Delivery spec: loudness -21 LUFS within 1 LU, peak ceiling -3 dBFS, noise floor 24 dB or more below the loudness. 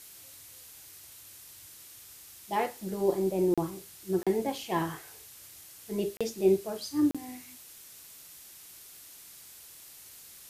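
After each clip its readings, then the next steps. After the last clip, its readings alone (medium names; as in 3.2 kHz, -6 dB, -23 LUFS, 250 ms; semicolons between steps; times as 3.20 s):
dropouts 4; longest dropout 36 ms; noise floor -51 dBFS; noise floor target -55 dBFS; loudness -30.5 LUFS; peak level -13.5 dBFS; loudness target -21.0 LUFS
-> interpolate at 3.54/4.23/6.17/7.11 s, 36 ms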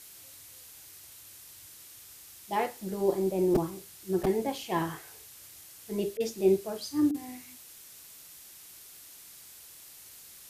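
dropouts 0; noise floor -51 dBFS; noise floor target -54 dBFS
-> noise print and reduce 6 dB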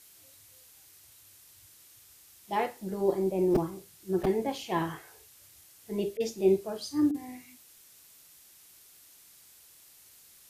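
noise floor -57 dBFS; loudness -30.0 LUFS; peak level -13.5 dBFS; loudness target -21.0 LUFS
-> trim +9 dB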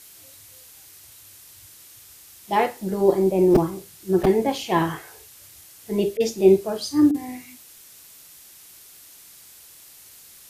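loudness -21.0 LUFS; peak level -4.5 dBFS; noise floor -48 dBFS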